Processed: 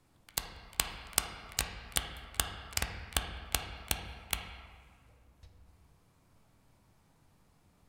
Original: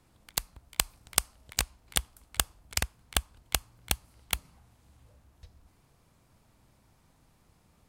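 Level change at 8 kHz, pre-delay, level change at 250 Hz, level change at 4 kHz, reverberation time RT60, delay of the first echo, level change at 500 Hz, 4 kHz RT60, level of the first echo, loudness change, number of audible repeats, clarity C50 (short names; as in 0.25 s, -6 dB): -4.0 dB, 6 ms, -2.0 dB, -3.5 dB, 1.7 s, none, -2.0 dB, 1.2 s, none, -3.5 dB, none, 5.5 dB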